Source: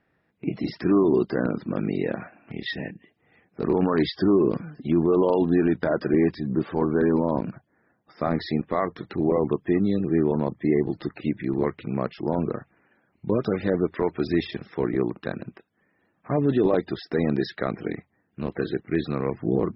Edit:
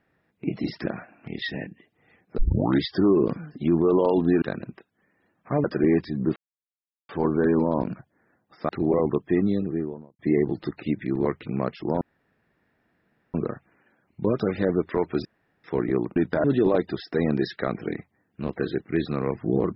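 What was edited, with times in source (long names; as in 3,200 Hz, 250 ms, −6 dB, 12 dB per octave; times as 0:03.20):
0:00.86–0:02.10: remove
0:03.62: tape start 0.43 s
0:05.66–0:05.94: swap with 0:15.21–0:16.43
0:06.66: splice in silence 0.73 s
0:08.26–0:09.07: remove
0:09.76–0:10.57: fade out and dull
0:12.39: splice in room tone 1.33 s
0:14.30–0:14.69: fill with room tone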